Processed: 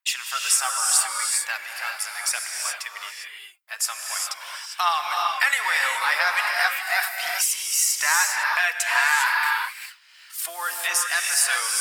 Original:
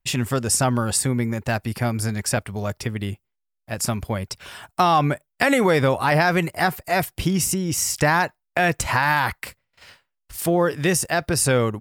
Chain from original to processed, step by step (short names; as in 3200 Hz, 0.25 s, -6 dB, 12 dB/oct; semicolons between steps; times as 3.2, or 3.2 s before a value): HPF 1100 Hz 24 dB/oct; phaser 0.41 Hz, delay 4.8 ms, feedback 46%; non-linear reverb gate 0.43 s rising, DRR 1 dB